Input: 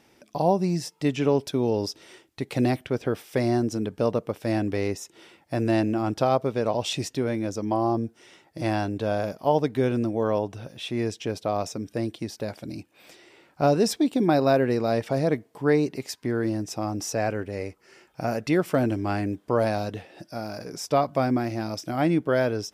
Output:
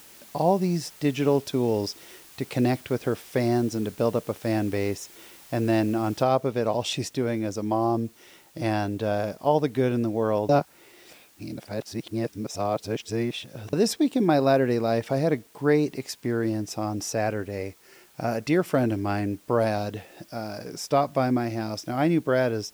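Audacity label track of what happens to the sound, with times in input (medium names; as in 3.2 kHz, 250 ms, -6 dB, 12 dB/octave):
6.230000	6.230000	noise floor step -50 dB -58 dB
10.490000	13.730000	reverse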